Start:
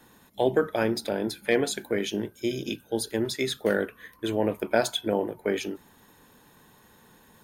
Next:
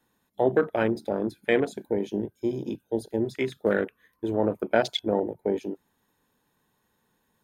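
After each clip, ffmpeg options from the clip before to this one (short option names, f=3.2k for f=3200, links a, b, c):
-af "afwtdn=0.0251,volume=1dB"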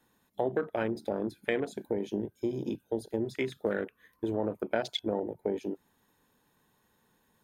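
-af "acompressor=threshold=-32dB:ratio=2.5,volume=1.5dB"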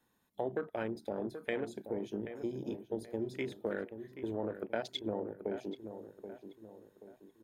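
-filter_complex "[0:a]asplit=2[a][b];[b]adelay=780,lowpass=f=1.7k:p=1,volume=-9.5dB,asplit=2[c][d];[d]adelay=780,lowpass=f=1.7k:p=1,volume=0.44,asplit=2[e][f];[f]adelay=780,lowpass=f=1.7k:p=1,volume=0.44,asplit=2[g][h];[h]adelay=780,lowpass=f=1.7k:p=1,volume=0.44,asplit=2[i][j];[j]adelay=780,lowpass=f=1.7k:p=1,volume=0.44[k];[a][c][e][g][i][k]amix=inputs=6:normalize=0,volume=-6dB"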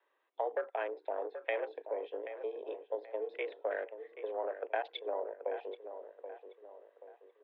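-af "highpass=f=350:t=q:w=0.5412,highpass=f=350:t=q:w=1.307,lowpass=f=3.1k:t=q:w=0.5176,lowpass=f=3.1k:t=q:w=0.7071,lowpass=f=3.1k:t=q:w=1.932,afreqshift=87,volume=2dB"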